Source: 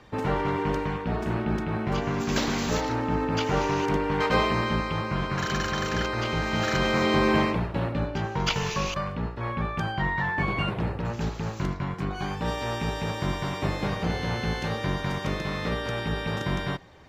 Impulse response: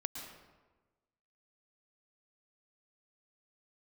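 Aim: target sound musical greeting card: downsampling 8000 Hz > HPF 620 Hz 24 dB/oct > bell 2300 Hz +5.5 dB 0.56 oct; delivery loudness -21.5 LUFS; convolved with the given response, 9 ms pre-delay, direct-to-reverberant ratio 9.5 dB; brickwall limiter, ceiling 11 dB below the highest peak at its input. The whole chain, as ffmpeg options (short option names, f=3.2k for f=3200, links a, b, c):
-filter_complex "[0:a]alimiter=limit=-20.5dB:level=0:latency=1,asplit=2[a][b];[1:a]atrim=start_sample=2205,adelay=9[c];[b][c]afir=irnorm=-1:irlink=0,volume=-9.5dB[d];[a][d]amix=inputs=2:normalize=0,aresample=8000,aresample=44100,highpass=f=620:w=0.5412,highpass=f=620:w=1.3066,equalizer=f=2.3k:t=o:w=0.56:g=5.5,volume=10dB"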